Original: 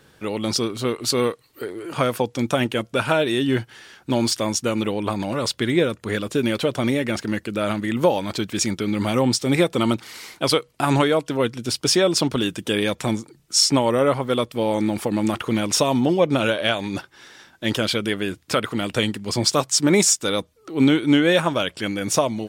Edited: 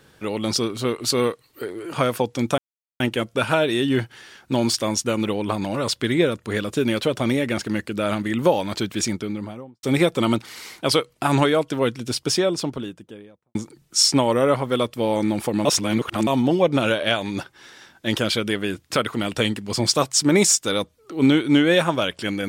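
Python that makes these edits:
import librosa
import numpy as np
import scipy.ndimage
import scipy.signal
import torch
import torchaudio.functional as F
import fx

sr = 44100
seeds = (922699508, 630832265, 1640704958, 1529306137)

y = fx.studio_fade_out(x, sr, start_s=8.49, length_s=0.92)
y = fx.studio_fade_out(y, sr, start_s=11.51, length_s=1.62)
y = fx.edit(y, sr, fx.insert_silence(at_s=2.58, length_s=0.42),
    fx.reverse_span(start_s=15.23, length_s=0.62), tone=tone)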